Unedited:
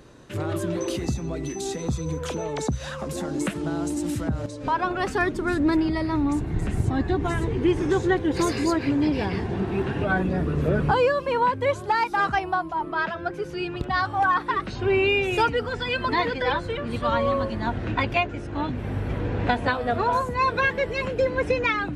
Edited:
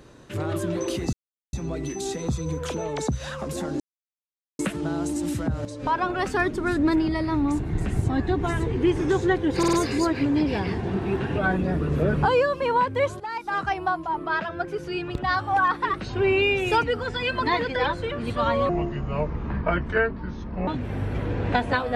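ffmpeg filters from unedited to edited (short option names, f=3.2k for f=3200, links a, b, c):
-filter_complex "[0:a]asplit=9[a][b][c][d][e][f][g][h][i];[a]atrim=end=1.13,asetpts=PTS-STARTPTS,afade=t=out:st=1.126:d=0.004:c=hsin,apad=pad_dur=0.4[j];[b]atrim=start=1.13:end=3.4,asetpts=PTS-STARTPTS,afade=t=in:d=0.004:c=hsin,afade=t=out:st=2.266:d=0.004:c=hsin,apad=pad_dur=0.79[k];[c]atrim=start=3.4:end=8.442,asetpts=PTS-STARTPTS,afade=t=in:d=0.004:c=hsin[l];[d]atrim=start=8.388:end=8.442[m];[e]atrim=start=8.388:end=8.442[n];[f]atrim=start=8.388:end=11.86,asetpts=PTS-STARTPTS,afade=t=out:st=3.468:d=0.004:c=hsin:silence=0.211349[o];[g]atrim=start=11.86:end=17.354,asetpts=PTS-STARTPTS,afade=t=in:d=0.68:silence=0.211349[p];[h]atrim=start=17.35:end=18.62,asetpts=PTS-STARTPTS,asetrate=28224,aresample=44100[q];[i]atrim=start=18.616[r];[j][k][l]concat=n=3:v=0:a=1[s];[s][m]acrossfade=d=0.004:c1=hsin:c2=hsin[t];[t][n]acrossfade=d=0.004:c1=hsin:c2=hsin[u];[o][p]concat=n=2:v=0:a=1[v];[u][v]acrossfade=d=0.004:c1=hsin:c2=hsin[w];[w][q]acrossfade=d=0.004:c1=hsin:c2=hsin[x];[x][r]acrossfade=d=0.004:c1=hsin:c2=hsin"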